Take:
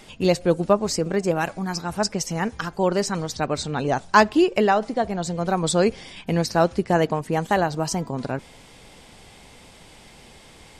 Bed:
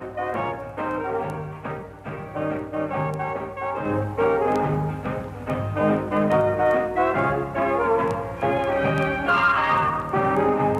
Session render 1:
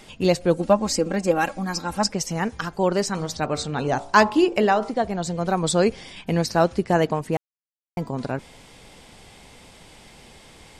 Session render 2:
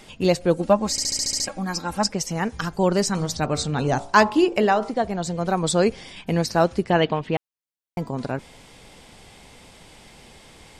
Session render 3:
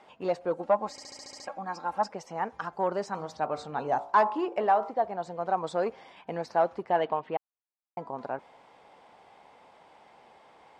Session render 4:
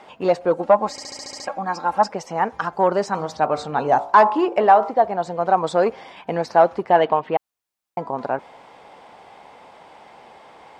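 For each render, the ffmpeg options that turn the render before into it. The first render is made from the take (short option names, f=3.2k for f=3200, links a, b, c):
-filter_complex "[0:a]asettb=1/sr,asplit=3[a][b][c];[a]atrim=end=0.574[d];[b]atrim=start=0.57:end=2.11,asetpts=PTS-STARTPTS,afade=t=in:d=0.004:c=qsin,afade=t=out:st=1.536:d=0.004:c=qsin,aecho=1:1:3.7:0.65,atrim=end_sample=67914[e];[c]atrim=start=2.106[f];[d][e]acrossfade=d=0.004:c1=hsin:c2=qsin[g];[g][f]acrossfade=d=0.004:c1=qsin:c2=hsin,asettb=1/sr,asplit=3[h][i][j];[h]atrim=end=3.064[k];[i]atrim=start=3.06:end=4.91,asetpts=PTS-STARTPTS,afade=t=in:d=0.004:c=qsin,afade=t=out:st=1.846:d=0.004:c=qsin,bandreject=f=56.72:t=h:w=4,bandreject=f=113.44:t=h:w=4,bandreject=f=170.16:t=h:w=4,bandreject=f=226.88:t=h:w=4,bandreject=f=283.6:t=h:w=4,bandreject=f=340.32:t=h:w=4,bandreject=f=397.04:t=h:w=4,bandreject=f=453.76:t=h:w=4,bandreject=f=510.48:t=h:w=4,bandreject=f=567.2:t=h:w=4,bandreject=f=623.92:t=h:w=4,bandreject=f=680.64:t=h:w=4,bandreject=f=737.36:t=h:w=4,bandreject=f=794.08:t=h:w=4,bandreject=f=850.8:t=h:w=4,bandreject=f=907.52:t=h:w=4,bandreject=f=964.24:t=h:w=4,bandreject=f=1.02096k:t=h:w=4,bandreject=f=1.07768k:t=h:w=4,bandreject=f=1.1344k:t=h:w=4,bandreject=f=1.19112k:t=h:w=4,bandreject=f=1.24784k:t=h:w=4,bandreject=f=1.30456k:t=h:w=4,bandreject=f=1.36128k:t=h:w=4,bandreject=f=1.418k:t=h:w=4[l];[j]atrim=start=4.906[m];[k][l]acrossfade=d=0.004:c1=hsin:c2=qsin[n];[n][m]acrossfade=d=0.004:c1=qsin:c2=hsin,asplit=3[o][p][q];[o]atrim=end=7.37,asetpts=PTS-STARTPTS,afade=t=out:st=7.366:d=0.004:c=hsin[r];[p]atrim=start=7.37:end=7.97,asetpts=PTS-STARTPTS,volume=0[s];[q]atrim=start=7.97,asetpts=PTS-STARTPTS,afade=t=in:d=0.004:c=hsin[t];[r][s][t]concat=n=3:v=0:a=1"
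-filter_complex "[0:a]asettb=1/sr,asplit=3[a][b][c];[a]atrim=end=2.544[d];[b]atrim=start=2.54:end=4.06,asetpts=PTS-STARTPTS,afade=t=in:d=0.004:c=qsin,afade=t=out:st=1.516:d=0.004:c=qsin,bass=f=250:g=5,treble=f=4k:g=4[e];[c]atrim=start=4.056[f];[d][e]acrossfade=d=0.004:c1=hsin:c2=qsin[g];[g][f]acrossfade=d=0.004:c1=qsin:c2=hsin,asplit=3[h][i][j];[h]afade=t=out:st=6.89:d=0.02[k];[i]lowpass=f=3.3k:t=q:w=2.9,afade=t=in:st=6.89:d=0.02,afade=t=out:st=7.36:d=0.02[l];[j]afade=t=in:st=7.36:d=0.02[m];[k][l][m]amix=inputs=3:normalize=0,asplit=9[n][o][p][q][r][s][t][u][v];[n]atrim=end=0.982[w];[o]atrim=start=0.908:end=0.982[x];[p]atrim=start=0.908:end=0.982[y];[q]atrim=start=0.908:end=0.982[z];[r]atrim=start=0.908:end=0.982[aa];[s]atrim=start=0.908:end=0.982[ab];[t]atrim=start=0.908:end=0.982[ac];[u]atrim=start=0.908:end=0.982[ad];[v]atrim=start=1.468[ae];[w][x]acrossfade=d=0.004:c1=hsin:c2=hsin[af];[af][y]acrossfade=d=0.004:c1=hsin:c2=hsin[ag];[ag][z]acrossfade=d=0.004:c1=hsin:c2=hsin[ah];[ah][aa]acrossfade=d=0.004:c1=hsin:c2=hsin[ai];[ai][ab]acrossfade=d=0.004:c1=hsin:c2=hsin[aj];[aj][ac]acrossfade=d=0.004:c1=hsin:c2=hsin[ak];[ak][ad]acrossfade=d=0.004:c1=hsin:c2=hsin[al];[al][ae]acrossfade=d=0.004:c1=hsin:c2=hsin"
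-af "asoftclip=type=tanh:threshold=-11dB,bandpass=f=850:t=q:w=1.7:csg=0"
-af "volume=10.5dB,alimiter=limit=-3dB:level=0:latency=1"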